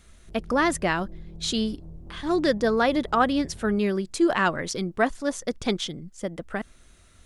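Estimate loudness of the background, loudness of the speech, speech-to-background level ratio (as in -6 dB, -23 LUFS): -45.5 LUFS, -26.0 LUFS, 19.5 dB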